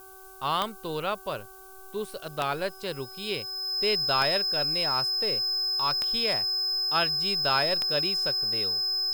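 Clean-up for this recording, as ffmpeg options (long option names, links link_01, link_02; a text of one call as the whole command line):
ffmpeg -i in.wav -af "adeclick=threshold=4,bandreject=frequency=381.5:width_type=h:width=4,bandreject=frequency=763:width_type=h:width=4,bandreject=frequency=1144.5:width_type=h:width=4,bandreject=frequency=1526:width_type=h:width=4,bandreject=frequency=5100:width=30,afftdn=noise_reduction=27:noise_floor=-46" out.wav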